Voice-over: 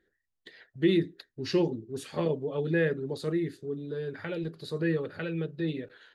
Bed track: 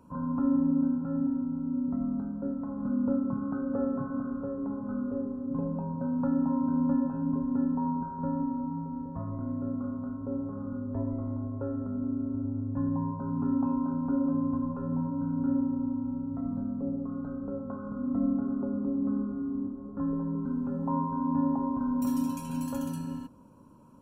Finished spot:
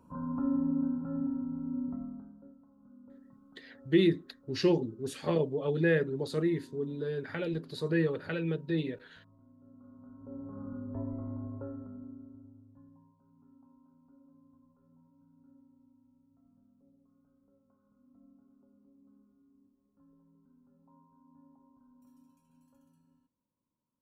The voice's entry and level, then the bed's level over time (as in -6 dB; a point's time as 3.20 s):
3.10 s, 0.0 dB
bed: 1.84 s -4.5 dB
2.69 s -27 dB
9.57 s -27 dB
10.60 s -5.5 dB
11.53 s -5.5 dB
13.16 s -33.5 dB